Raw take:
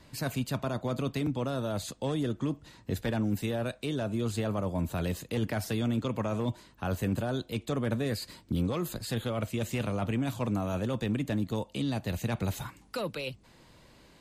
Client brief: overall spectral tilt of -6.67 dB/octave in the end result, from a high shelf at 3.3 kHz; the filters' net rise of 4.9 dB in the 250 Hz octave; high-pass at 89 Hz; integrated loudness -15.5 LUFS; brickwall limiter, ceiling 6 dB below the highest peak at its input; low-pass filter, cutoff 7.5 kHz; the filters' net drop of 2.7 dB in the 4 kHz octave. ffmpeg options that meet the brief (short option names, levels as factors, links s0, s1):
-af "highpass=89,lowpass=7500,equalizer=f=250:t=o:g=6,highshelf=f=3300:g=5,equalizer=f=4000:t=o:g=-6.5,volume=6.31,alimiter=limit=0.501:level=0:latency=1"